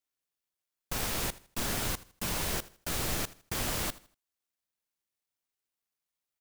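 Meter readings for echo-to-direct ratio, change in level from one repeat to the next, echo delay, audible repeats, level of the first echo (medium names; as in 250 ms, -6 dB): -18.5 dB, -10.0 dB, 80 ms, 2, -19.0 dB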